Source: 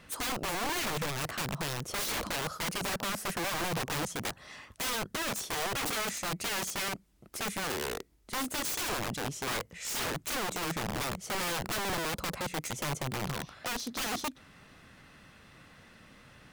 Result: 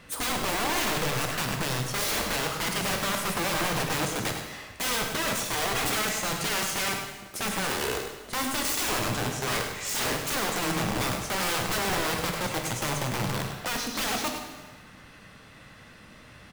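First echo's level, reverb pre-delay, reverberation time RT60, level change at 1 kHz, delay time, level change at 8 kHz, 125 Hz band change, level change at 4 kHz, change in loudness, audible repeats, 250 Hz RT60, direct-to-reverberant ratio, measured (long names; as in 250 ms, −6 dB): −8.0 dB, 6 ms, 1.3 s, +5.5 dB, 102 ms, +5.5 dB, +6.0 dB, +6.0 dB, +5.5 dB, 1, 1.4 s, 1.5 dB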